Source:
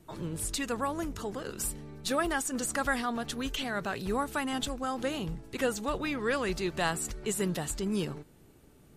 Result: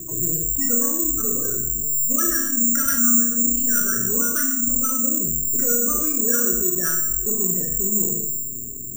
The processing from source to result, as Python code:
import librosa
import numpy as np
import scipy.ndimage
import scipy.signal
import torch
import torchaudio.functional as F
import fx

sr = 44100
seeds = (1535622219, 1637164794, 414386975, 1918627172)

p1 = fx.hum_notches(x, sr, base_hz=50, count=4)
p2 = fx.spec_gate(p1, sr, threshold_db=-10, keep='strong')
p3 = fx.curve_eq(p2, sr, hz=(450.0, 830.0, 1400.0, 3400.0), db=(0, -29, 7, -27))
p4 = fx.rider(p3, sr, range_db=4, speed_s=2.0)
p5 = p3 + F.gain(torch.from_numpy(p4), 2.0).numpy()
p6 = 10.0 ** (-17.5 / 20.0) * np.tanh(p5 / 10.0 ** (-17.5 / 20.0))
p7 = fx.comb_fb(p6, sr, f0_hz=120.0, decay_s=0.6, harmonics='all', damping=0.0, mix_pct=80)
p8 = fx.rev_schroeder(p7, sr, rt60_s=0.62, comb_ms=26, drr_db=1.5)
p9 = (np.kron(scipy.signal.resample_poly(p8, 1, 6), np.eye(6)[0]) * 6)[:len(p8)]
p10 = fx.env_flatten(p9, sr, amount_pct=50)
y = F.gain(torch.from_numpy(p10), 1.5).numpy()